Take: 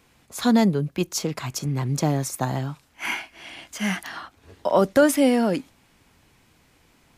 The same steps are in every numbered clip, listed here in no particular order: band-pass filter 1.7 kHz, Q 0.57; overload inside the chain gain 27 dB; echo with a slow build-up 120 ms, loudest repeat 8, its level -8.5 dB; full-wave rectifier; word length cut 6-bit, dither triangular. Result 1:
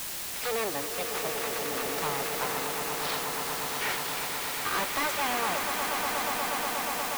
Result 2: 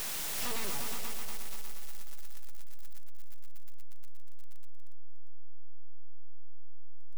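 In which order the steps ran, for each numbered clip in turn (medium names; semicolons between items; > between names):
full-wave rectifier > band-pass filter > overload inside the chain > echo with a slow build-up > word length cut; band-pass filter > word length cut > full-wave rectifier > echo with a slow build-up > overload inside the chain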